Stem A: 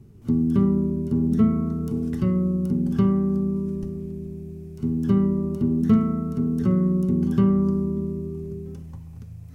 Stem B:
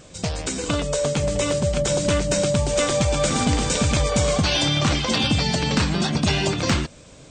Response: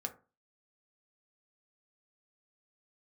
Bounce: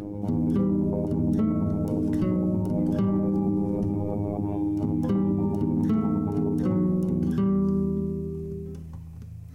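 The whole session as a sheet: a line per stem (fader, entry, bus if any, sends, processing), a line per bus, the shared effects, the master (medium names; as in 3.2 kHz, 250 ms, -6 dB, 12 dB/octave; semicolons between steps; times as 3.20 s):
-0.5 dB, 0.00 s, no send, hum notches 60/120/180/240 Hz
-3.0 dB, 0.00 s, send -4 dB, cascade formant filter u; robot voice 102 Hz; level flattener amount 70%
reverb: on, RT60 0.35 s, pre-delay 3 ms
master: peak limiter -16.5 dBFS, peak gain reduction 8 dB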